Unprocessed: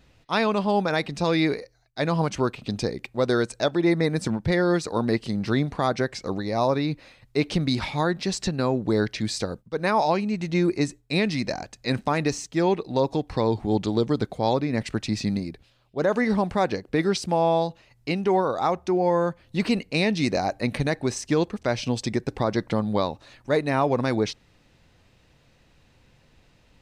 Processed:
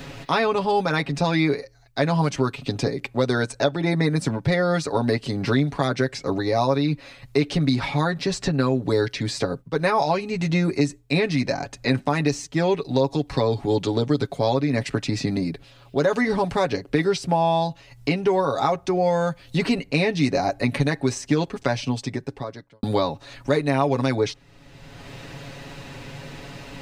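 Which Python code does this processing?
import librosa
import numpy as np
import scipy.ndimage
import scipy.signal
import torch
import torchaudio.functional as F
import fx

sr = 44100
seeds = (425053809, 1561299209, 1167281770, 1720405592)

y = fx.edit(x, sr, fx.fade_out_span(start_s=21.63, length_s=1.2, curve='qua'), tone=tone)
y = y + 0.72 * np.pad(y, (int(7.2 * sr / 1000.0), 0))[:len(y)]
y = fx.band_squash(y, sr, depth_pct=70)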